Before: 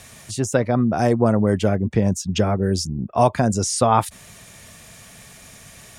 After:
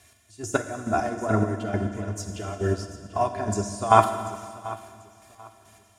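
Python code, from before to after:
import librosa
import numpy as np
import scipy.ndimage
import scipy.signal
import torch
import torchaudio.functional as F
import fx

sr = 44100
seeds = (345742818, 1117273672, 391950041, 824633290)

p1 = scipy.signal.sosfilt(scipy.signal.butter(2, 63.0, 'highpass', fs=sr, output='sos'), x)
p2 = fx.peak_eq(p1, sr, hz=85.0, db=4.0, octaves=0.48)
p3 = p2 + 0.79 * np.pad(p2, (int(2.9 * sr / 1000.0), 0))[:len(p2)]
p4 = fx.dynamic_eq(p3, sr, hz=1500.0, q=0.78, threshold_db=-30.0, ratio=4.0, max_db=6)
p5 = fx.chopper(p4, sr, hz=2.3, depth_pct=65, duty_pct=30)
p6 = p5 + fx.echo_feedback(p5, sr, ms=739, feedback_pct=42, wet_db=-13.0, dry=0)
p7 = fx.rev_fdn(p6, sr, rt60_s=2.7, lf_ratio=1.0, hf_ratio=0.95, size_ms=30.0, drr_db=3.5)
p8 = fx.upward_expand(p7, sr, threshold_db=-35.0, expansion=1.5)
y = F.gain(torch.from_numpy(p8), -2.0).numpy()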